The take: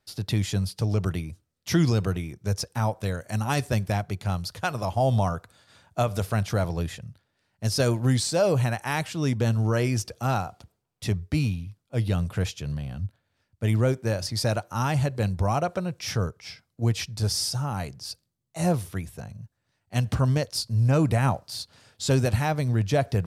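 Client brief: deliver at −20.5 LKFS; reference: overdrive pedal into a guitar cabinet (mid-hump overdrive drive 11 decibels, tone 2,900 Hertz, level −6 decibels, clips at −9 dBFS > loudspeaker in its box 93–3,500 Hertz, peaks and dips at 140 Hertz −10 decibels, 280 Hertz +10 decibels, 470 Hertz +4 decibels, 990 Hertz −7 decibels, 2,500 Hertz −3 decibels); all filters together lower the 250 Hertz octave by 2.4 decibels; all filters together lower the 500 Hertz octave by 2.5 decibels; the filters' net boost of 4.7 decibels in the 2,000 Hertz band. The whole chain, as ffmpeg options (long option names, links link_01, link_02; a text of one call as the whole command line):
ffmpeg -i in.wav -filter_complex "[0:a]equalizer=frequency=250:width_type=o:gain=-6,equalizer=frequency=500:width_type=o:gain=-4.5,equalizer=frequency=2000:width_type=o:gain=8,asplit=2[link_01][link_02];[link_02]highpass=frequency=720:poles=1,volume=11dB,asoftclip=type=tanh:threshold=-9dB[link_03];[link_01][link_03]amix=inputs=2:normalize=0,lowpass=frequency=2900:poles=1,volume=-6dB,highpass=93,equalizer=frequency=140:width_type=q:width=4:gain=-10,equalizer=frequency=280:width_type=q:width=4:gain=10,equalizer=frequency=470:width_type=q:width=4:gain=4,equalizer=frequency=990:width_type=q:width=4:gain=-7,equalizer=frequency=2500:width_type=q:width=4:gain=-3,lowpass=frequency=3500:width=0.5412,lowpass=frequency=3500:width=1.3066,volume=8dB" out.wav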